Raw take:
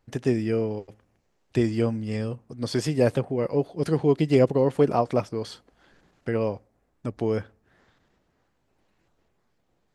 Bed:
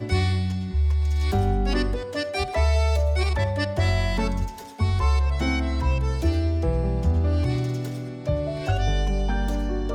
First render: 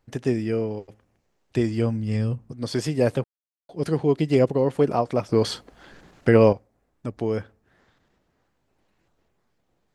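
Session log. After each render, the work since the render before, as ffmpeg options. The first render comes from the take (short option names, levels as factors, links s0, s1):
-filter_complex "[0:a]asettb=1/sr,asplit=3[s0][s1][s2];[s0]atrim=end=1.644[s3];[s1]atrim=start=1.64:end=2.52,asetpts=PTS-STARTPTS,afade=t=in:d=0.004:c=qsin,afade=t=out:st=0.876:d=0.004:c=qsin,asubboost=boost=9.5:cutoff=240[s4];[s2]atrim=start=2.516[s5];[s3][s4]acrossfade=d=0.004:c1=hsin:c2=qsin[s6];[s6][s5]acrossfade=d=0.004:c1=qsin:c2=hsin,asplit=5[s7][s8][s9][s10][s11];[s7]atrim=end=3.24,asetpts=PTS-STARTPTS,afade=t=out:st=3.236:d=0.004:c=hsin[s12];[s8]atrim=start=3.24:end=3.69,asetpts=PTS-STARTPTS,volume=0[s13];[s9]atrim=start=3.69:end=5.292,asetpts=PTS-STARTPTS,afade=t=in:d=0.004:c=hsin[s14];[s10]atrim=start=5.288:end=6.532,asetpts=PTS-STARTPTS,volume=3.35[s15];[s11]atrim=start=6.528[s16];[s12][s13][s14]concat=n=3:v=0:a=1[s17];[s17][s15]acrossfade=d=0.004:c1=hsin:c2=hsin[s18];[s18][s16]acrossfade=d=0.004:c1=hsin:c2=hsin"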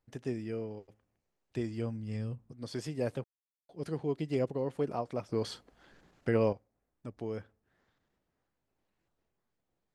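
-af "volume=0.237"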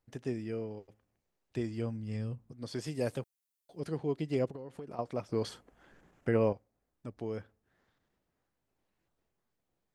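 -filter_complex "[0:a]asettb=1/sr,asplit=3[s0][s1][s2];[s0]atrim=end=2.874[s3];[s1]atrim=start=2.87:end=3.8,asetpts=PTS-STARTPTS,afade=t=in:d=0.004:c=qsin,afade=t=out:st=0.926:d=0.004:c=qsin,highshelf=f=4800:g=10.5[s4];[s2]atrim=start=3.796[s5];[s3][s4]acrossfade=d=0.004:c1=hsin:c2=qsin[s6];[s6][s5]acrossfade=d=0.004:c1=qsin:c2=hsin,asettb=1/sr,asplit=3[s7][s8][s9];[s7]atrim=end=4.474[s10];[s8]atrim=start=4.47:end=4.99,asetpts=PTS-STARTPTS,afade=t=in:d=0.004:c=qsin,afade=t=out:st=0.516:d=0.004:c=qsin,acompressor=threshold=0.0112:ratio=16:attack=3.2:release=140:knee=1:detection=peak[s11];[s9]atrim=start=4.986[s12];[s10][s11]acrossfade=d=0.004:c1=hsin:c2=qsin[s13];[s13][s12]acrossfade=d=0.004:c1=qsin:c2=hsin,asettb=1/sr,asplit=3[s14][s15][s16];[s14]atrim=end=5.494[s17];[s15]atrim=start=5.49:end=6.53,asetpts=PTS-STARTPTS,afade=t=in:d=0.004:c=qsin,afade=t=out:st=1.036:d=0.004:c=qsin,equalizer=f=4300:t=o:w=0.77:g=-9.5[s18];[s16]atrim=start=6.526[s19];[s17][s18]acrossfade=d=0.004:c1=hsin:c2=qsin[s20];[s20][s19]acrossfade=d=0.004:c1=qsin:c2=hsin"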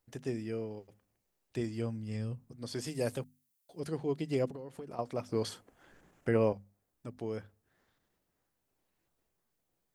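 -af "highshelf=f=6800:g=8.5,bandreject=f=50:t=h:w=6,bandreject=f=100:t=h:w=6,bandreject=f=150:t=h:w=6,bandreject=f=200:t=h:w=6,bandreject=f=250:t=h:w=6"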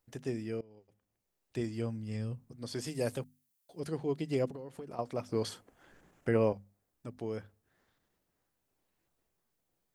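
-filter_complex "[0:a]asplit=2[s0][s1];[s0]atrim=end=0.61,asetpts=PTS-STARTPTS,afade=t=out:st=0.606:d=0.004:c=hsin:silence=0.0841395[s2];[s1]atrim=start=0.61,asetpts=PTS-STARTPTS,afade=t=in:d=1:silence=0.0841395[s3];[s2][s3]concat=n=2:v=0:a=1"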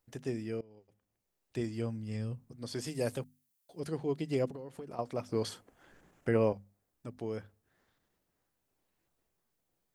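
-af anull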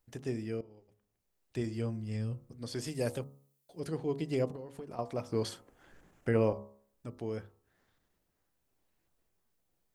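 -af "lowshelf=f=71:g=7,bandreject=f=69.28:t=h:w=4,bandreject=f=138.56:t=h:w=4,bandreject=f=207.84:t=h:w=4,bandreject=f=277.12:t=h:w=4,bandreject=f=346.4:t=h:w=4,bandreject=f=415.68:t=h:w=4,bandreject=f=484.96:t=h:w=4,bandreject=f=554.24:t=h:w=4,bandreject=f=623.52:t=h:w=4,bandreject=f=692.8:t=h:w=4,bandreject=f=762.08:t=h:w=4,bandreject=f=831.36:t=h:w=4,bandreject=f=900.64:t=h:w=4,bandreject=f=969.92:t=h:w=4,bandreject=f=1039.2:t=h:w=4,bandreject=f=1108.48:t=h:w=4,bandreject=f=1177.76:t=h:w=4,bandreject=f=1247.04:t=h:w=4,bandreject=f=1316.32:t=h:w=4"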